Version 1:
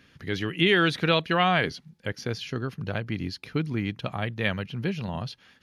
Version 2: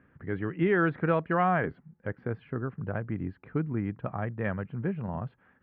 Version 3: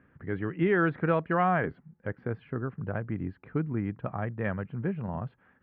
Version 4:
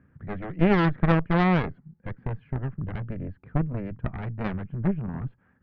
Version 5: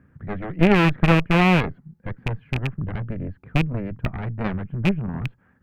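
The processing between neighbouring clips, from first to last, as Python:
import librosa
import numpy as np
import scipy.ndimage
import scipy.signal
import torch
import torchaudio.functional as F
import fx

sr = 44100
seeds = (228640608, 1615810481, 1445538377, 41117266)

y1 = scipy.signal.sosfilt(scipy.signal.cheby2(4, 70, 6800.0, 'lowpass', fs=sr, output='sos'), x)
y1 = F.gain(torch.from_numpy(y1), -2.0).numpy()
y2 = y1
y3 = fx.cheby_harmonics(y2, sr, harmonics=(3, 4), levels_db=(-15, -11), full_scale_db=-13.0)
y3 = fx.bass_treble(y3, sr, bass_db=10, treble_db=-12)
y3 = F.gain(torch.from_numpy(y3), 3.0).numpy()
y4 = fx.rattle_buzz(y3, sr, strikes_db=-25.0, level_db=-18.0)
y4 = F.gain(torch.from_numpy(y4), 4.0).numpy()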